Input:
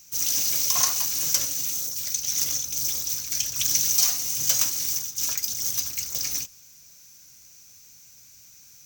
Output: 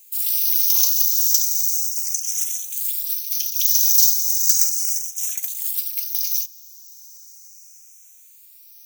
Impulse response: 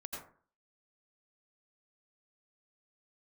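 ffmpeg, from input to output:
-filter_complex "[0:a]aderivative,acontrast=58,asplit=2[link_01][link_02];[link_02]afreqshift=0.36[link_03];[link_01][link_03]amix=inputs=2:normalize=1"

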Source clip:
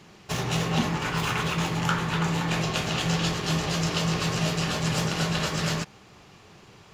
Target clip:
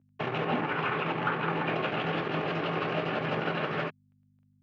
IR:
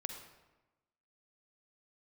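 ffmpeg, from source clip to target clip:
-filter_complex "[0:a]acrossover=split=180[link_01][link_02];[link_01]acompressor=threshold=-43dB:ratio=12[link_03];[link_03][link_02]amix=inputs=2:normalize=0,atempo=1.5,aeval=exprs='sgn(val(0))*max(abs(val(0))-0.00841,0)':channel_layout=same,aeval=exprs='val(0)+0.001*(sin(2*PI*50*n/s)+sin(2*PI*2*50*n/s)/2+sin(2*PI*3*50*n/s)/3+sin(2*PI*4*50*n/s)/4+sin(2*PI*5*50*n/s)/5)':channel_layout=same,volume=23.5dB,asoftclip=hard,volume=-23.5dB,highpass=frequency=110:width=0.5412,highpass=frequency=110:width=1.3066,equalizer=frequency=180:width_type=q:width=4:gain=-9,equalizer=frequency=1000:width_type=q:width=4:gain=-4,equalizer=frequency=1900:width_type=q:width=4:gain=-4,lowpass=frequency=2400:width=0.5412,lowpass=frequency=2400:width=1.3066,volume=4.5dB"

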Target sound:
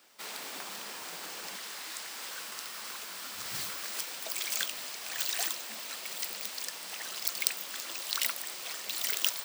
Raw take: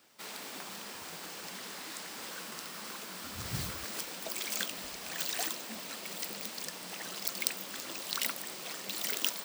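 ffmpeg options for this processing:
ffmpeg -i in.wav -af "asetnsamples=nb_out_samples=441:pad=0,asendcmd='1.56 highpass f 1000',highpass=frequency=420:poles=1,volume=3dB" out.wav

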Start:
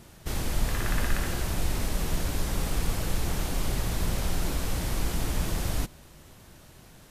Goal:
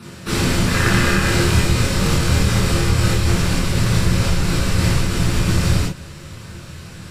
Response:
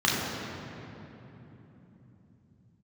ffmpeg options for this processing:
-filter_complex "[0:a]asubboost=boost=4:cutoff=100,acompressor=threshold=-16dB:ratio=6,asettb=1/sr,asplit=3[link_01][link_02][link_03];[link_01]atrim=end=0.884[link_04];[link_02]atrim=start=0.88:end=3.3,asetpts=PTS-STARTPTS,afade=type=in:duration=0.004:curve=qsin,afade=type=out:start_time=2.416:duration=0.004:curve=qsin,asplit=2[link_05][link_06];[link_06]adelay=26,volume=-5dB[link_07];[link_05][link_07]amix=inputs=2:normalize=0,atrim=end_sample=106722[link_08];[link_03]atrim=start=3.296[link_09];[link_04][link_08]acrossfade=duration=0.004:curve1=hsin:curve2=qsin[link_10];[link_10][link_09]acrossfade=duration=0.004:curve1=qsin:curve2=hsin[link_11];[1:a]atrim=start_sample=2205,atrim=end_sample=4410,asetrate=57330,aresample=44100[link_12];[link_11][link_12]afir=irnorm=-1:irlink=0,volume=4dB"

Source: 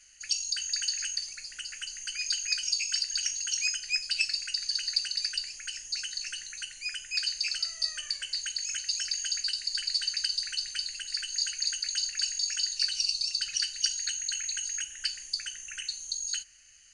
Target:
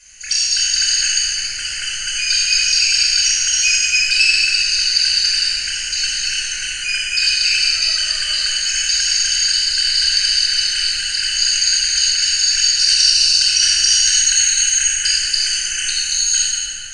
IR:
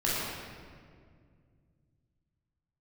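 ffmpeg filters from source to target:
-filter_complex "[0:a]asetnsamples=nb_out_samples=441:pad=0,asendcmd='12.79 highshelf g 9.5',highshelf=frequency=6700:gain=2.5[link_01];[1:a]atrim=start_sample=2205,asetrate=24696,aresample=44100[link_02];[link_01][link_02]afir=irnorm=-1:irlink=0,alimiter=level_in=4.5dB:limit=-1dB:release=50:level=0:latency=1,volume=-1dB"

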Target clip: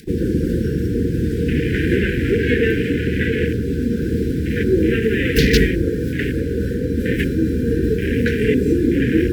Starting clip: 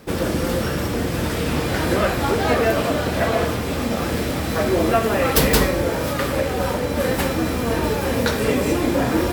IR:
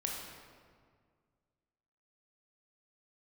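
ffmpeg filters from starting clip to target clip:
-af "afwtdn=0.0447,asuperstop=centerf=860:order=20:qfactor=0.81,acompressor=mode=upward:threshold=-39dB:ratio=2.5,volume=4.5dB"

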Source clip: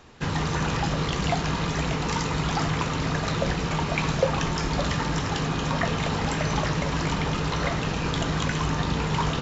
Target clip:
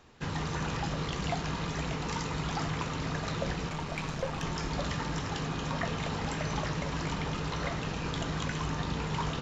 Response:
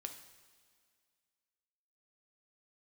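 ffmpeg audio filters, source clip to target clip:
-filter_complex "[0:a]asettb=1/sr,asplit=3[link_01][link_02][link_03];[link_01]atrim=end=3.694[link_04];[link_02]atrim=start=3.69:end=4.43,asetpts=PTS-STARTPTS,afade=type=in:duration=0.004:curve=qsin,afade=type=out:start_time=0.736:duration=0.004:curve=qsin,aeval=exprs='(tanh(7.94*val(0)+0.5)-tanh(0.5))/7.94':channel_layout=same[link_05];[link_03]atrim=start=4.426[link_06];[link_04][link_05]acrossfade=duration=0.004:curve1=hsin:curve2=qsin[link_07];[link_07][link_06]acrossfade=duration=0.004:curve1=qsin:curve2=hsin,volume=-7.5dB"

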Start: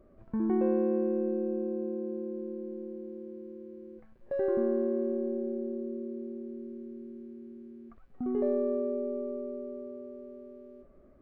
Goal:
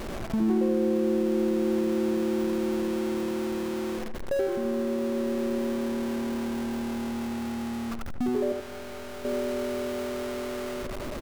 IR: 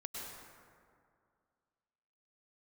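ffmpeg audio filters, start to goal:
-filter_complex "[0:a]aeval=exprs='val(0)+0.5*0.0178*sgn(val(0))':channel_layout=same,acompressor=threshold=-29dB:ratio=5,asettb=1/sr,asplit=3[link_01][link_02][link_03];[link_01]atrim=end=8.524[link_04];[link_02]atrim=start=8.52:end=9.25,asetpts=PTS-STARTPTS,afade=type=in:duration=0.004:curve=qsin,afade=type=out:start_time=0.726:duration=0.004:curve=qsin,aeval=exprs='(tanh(158*val(0)+0.3)-tanh(0.3))/158':channel_layout=same[link_05];[link_03]atrim=start=9.246[link_06];[link_04][link_05]acrossfade=duration=0.004:curve1=hsin:curve2=qsin[link_07];[link_07][link_06]acrossfade=duration=0.004:curve1=qsin:curve2=hsin,asplit=2[link_08][link_09];[link_09]adelay=78,lowpass=frequency=2000:poles=1,volume=-6dB,asplit=2[link_10][link_11];[link_11]adelay=78,lowpass=frequency=2000:poles=1,volume=0.31,asplit=2[link_12][link_13];[link_13]adelay=78,lowpass=frequency=2000:poles=1,volume=0.31,asplit=2[link_14][link_15];[link_15]adelay=78,lowpass=frequency=2000:poles=1,volume=0.31[link_16];[link_08][link_10][link_12][link_14][link_16]amix=inputs=5:normalize=0,volume=5dB"

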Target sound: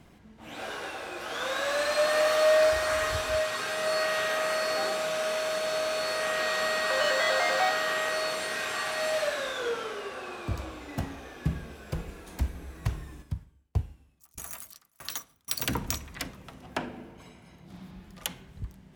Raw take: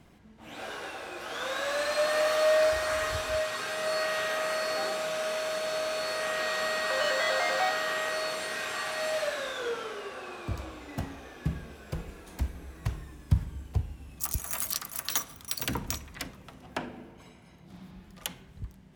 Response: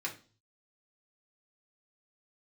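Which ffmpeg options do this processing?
-filter_complex "[0:a]asplit=3[link_01][link_02][link_03];[link_01]afade=type=out:start_time=13.21:duration=0.02[link_04];[link_02]aeval=exprs='val(0)*pow(10,-36*if(lt(mod(1.6*n/s,1),2*abs(1.6)/1000),1-mod(1.6*n/s,1)/(2*abs(1.6)/1000),(mod(1.6*n/s,1)-2*abs(1.6)/1000)/(1-2*abs(1.6)/1000))/20)':channel_layout=same,afade=type=in:start_time=13.21:duration=0.02,afade=type=out:start_time=15.47:duration=0.02[link_05];[link_03]afade=type=in:start_time=15.47:duration=0.02[link_06];[link_04][link_05][link_06]amix=inputs=3:normalize=0,volume=2dB"

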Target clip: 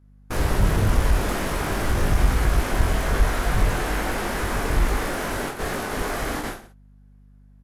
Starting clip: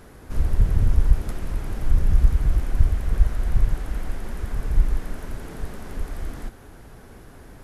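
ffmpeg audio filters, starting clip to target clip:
ffmpeg -i in.wav -filter_complex "[0:a]agate=range=-44dB:threshold=-33dB:ratio=16:detection=peak,crystalizer=i=3.5:c=0,asplit=2[link_01][link_02];[link_02]highpass=frequency=720:poles=1,volume=25dB,asoftclip=type=tanh:threshold=-12dB[link_03];[link_01][link_03]amix=inputs=2:normalize=0,lowpass=frequency=1100:poles=1,volume=-6dB,aeval=exprs='val(0)+0.00178*(sin(2*PI*50*n/s)+sin(2*PI*2*50*n/s)/2+sin(2*PI*3*50*n/s)/3+sin(2*PI*4*50*n/s)/4+sin(2*PI*5*50*n/s)/5)':channel_layout=same,asplit=2[link_04][link_05];[link_05]aecho=0:1:20|46|79.8|123.7|180.9:0.631|0.398|0.251|0.158|0.1[link_06];[link_04][link_06]amix=inputs=2:normalize=0" out.wav

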